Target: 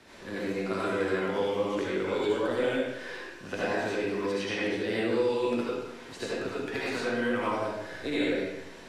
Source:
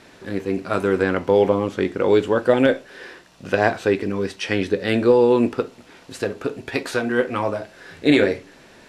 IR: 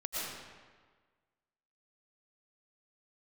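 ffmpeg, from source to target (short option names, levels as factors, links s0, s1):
-filter_complex "[0:a]acrossover=split=140|340|2100|7200[s0][s1][s2][s3][s4];[s0]acompressor=threshold=0.00447:ratio=4[s5];[s1]acompressor=threshold=0.0178:ratio=4[s6];[s2]acompressor=threshold=0.0316:ratio=4[s7];[s3]acompressor=threshold=0.0126:ratio=4[s8];[s4]acompressor=threshold=0.00158:ratio=4[s9];[s5][s6][s7][s8][s9]amix=inputs=5:normalize=0[s10];[1:a]atrim=start_sample=2205,asetrate=70560,aresample=44100[s11];[s10][s11]afir=irnorm=-1:irlink=0"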